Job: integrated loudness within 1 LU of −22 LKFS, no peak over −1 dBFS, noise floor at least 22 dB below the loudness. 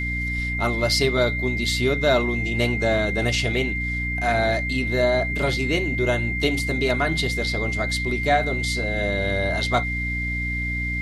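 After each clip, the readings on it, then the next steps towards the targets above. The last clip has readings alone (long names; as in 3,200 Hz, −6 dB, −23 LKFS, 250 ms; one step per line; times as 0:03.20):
mains hum 60 Hz; hum harmonics up to 300 Hz; level of the hum −26 dBFS; interfering tone 2,100 Hz; level of the tone −26 dBFS; integrated loudness −22.5 LKFS; sample peak −7.0 dBFS; target loudness −22.0 LKFS
→ hum removal 60 Hz, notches 5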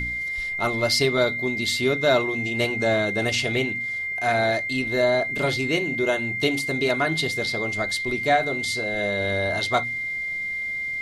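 mains hum none found; interfering tone 2,100 Hz; level of the tone −26 dBFS
→ notch filter 2,100 Hz, Q 30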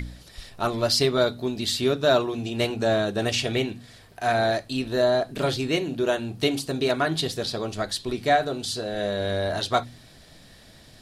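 interfering tone none found; integrated loudness −25.0 LKFS; sample peak −8.5 dBFS; target loudness −22.0 LKFS
→ level +3 dB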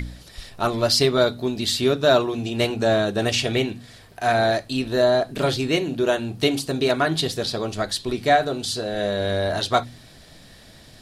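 integrated loudness −22.0 LKFS; sample peak −5.5 dBFS; background noise floor −47 dBFS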